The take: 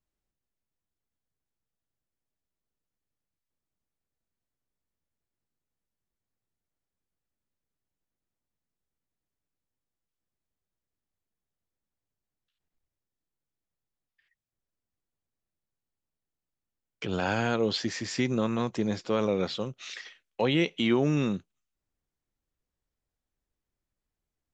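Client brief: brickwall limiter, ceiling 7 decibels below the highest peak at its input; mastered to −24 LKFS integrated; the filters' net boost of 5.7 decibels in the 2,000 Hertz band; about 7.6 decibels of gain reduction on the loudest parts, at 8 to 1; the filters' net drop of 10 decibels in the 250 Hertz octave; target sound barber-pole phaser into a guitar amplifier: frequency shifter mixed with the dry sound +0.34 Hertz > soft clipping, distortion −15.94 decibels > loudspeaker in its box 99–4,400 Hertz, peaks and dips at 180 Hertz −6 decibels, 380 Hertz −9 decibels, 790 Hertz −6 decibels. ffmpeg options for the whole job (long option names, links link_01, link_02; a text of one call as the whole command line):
ffmpeg -i in.wav -filter_complex "[0:a]equalizer=frequency=250:width_type=o:gain=-9,equalizer=frequency=2000:width_type=o:gain=7.5,acompressor=threshold=-29dB:ratio=8,alimiter=limit=-23dB:level=0:latency=1,asplit=2[link_01][link_02];[link_02]afreqshift=0.34[link_03];[link_01][link_03]amix=inputs=2:normalize=1,asoftclip=threshold=-31.5dB,highpass=99,equalizer=frequency=180:width_type=q:width=4:gain=-6,equalizer=frequency=380:width_type=q:width=4:gain=-9,equalizer=frequency=790:width_type=q:width=4:gain=-6,lowpass=frequency=4400:width=0.5412,lowpass=frequency=4400:width=1.3066,volume=18dB" out.wav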